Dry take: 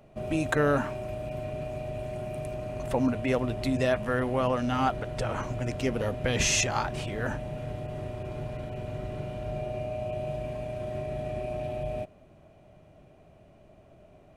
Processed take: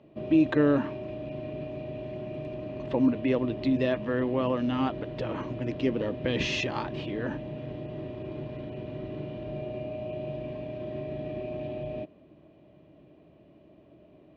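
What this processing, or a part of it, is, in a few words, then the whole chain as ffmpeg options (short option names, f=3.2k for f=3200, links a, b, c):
guitar cabinet: -af "highpass=85,equalizer=f=100:t=q:w=4:g=-8,equalizer=f=310:t=q:w=4:g=10,equalizer=f=750:t=q:w=4:g=-8,equalizer=f=1.4k:t=q:w=4:g=-9,equalizer=f=2.2k:t=q:w=4:g=-4,lowpass=f=3.9k:w=0.5412,lowpass=f=3.9k:w=1.3066"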